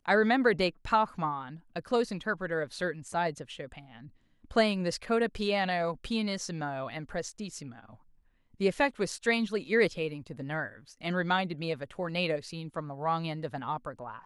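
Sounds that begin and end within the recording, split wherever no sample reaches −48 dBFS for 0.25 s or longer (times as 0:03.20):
0:04.44–0:07.95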